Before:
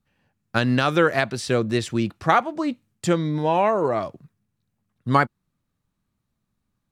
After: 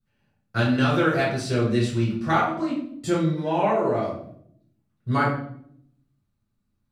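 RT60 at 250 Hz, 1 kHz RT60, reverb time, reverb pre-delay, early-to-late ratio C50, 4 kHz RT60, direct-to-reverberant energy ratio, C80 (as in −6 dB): 1.0 s, 0.55 s, 0.65 s, 3 ms, 3.5 dB, 0.50 s, −7.5 dB, 7.5 dB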